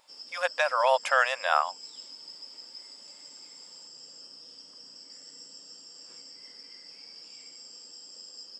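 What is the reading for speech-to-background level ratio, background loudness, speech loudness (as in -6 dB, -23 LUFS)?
18.0 dB, -44.0 LUFS, -26.0 LUFS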